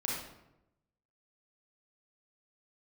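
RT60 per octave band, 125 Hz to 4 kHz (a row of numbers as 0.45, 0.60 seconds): 1.2, 1.0, 0.95, 0.85, 0.70, 0.55 seconds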